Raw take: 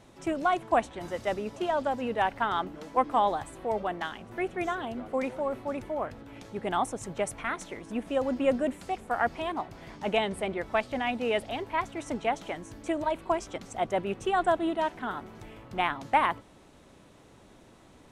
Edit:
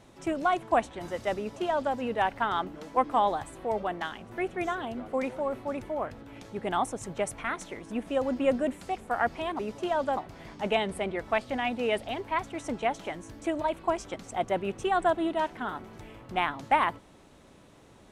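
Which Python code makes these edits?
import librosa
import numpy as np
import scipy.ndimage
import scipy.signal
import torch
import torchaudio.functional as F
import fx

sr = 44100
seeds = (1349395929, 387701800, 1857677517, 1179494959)

y = fx.edit(x, sr, fx.duplicate(start_s=1.37, length_s=0.58, to_s=9.59), tone=tone)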